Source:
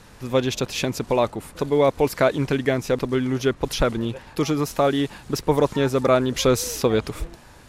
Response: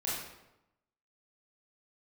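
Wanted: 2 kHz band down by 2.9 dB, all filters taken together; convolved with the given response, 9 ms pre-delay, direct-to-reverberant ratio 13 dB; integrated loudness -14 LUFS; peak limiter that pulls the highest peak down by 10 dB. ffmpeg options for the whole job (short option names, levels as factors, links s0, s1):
-filter_complex "[0:a]equalizer=f=2000:t=o:g=-4,alimiter=limit=0.15:level=0:latency=1,asplit=2[s0][s1];[1:a]atrim=start_sample=2205,adelay=9[s2];[s1][s2]afir=irnorm=-1:irlink=0,volume=0.126[s3];[s0][s3]amix=inputs=2:normalize=0,volume=4.47"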